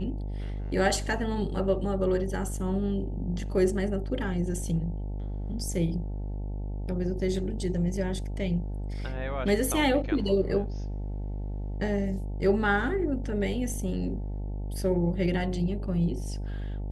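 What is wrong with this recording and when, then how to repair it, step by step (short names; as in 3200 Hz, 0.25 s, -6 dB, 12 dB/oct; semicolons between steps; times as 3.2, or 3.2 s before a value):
buzz 50 Hz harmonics 18 -33 dBFS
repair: de-hum 50 Hz, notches 18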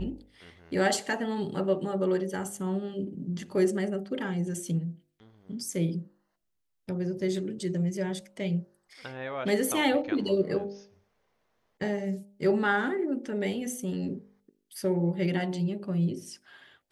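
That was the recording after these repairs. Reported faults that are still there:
none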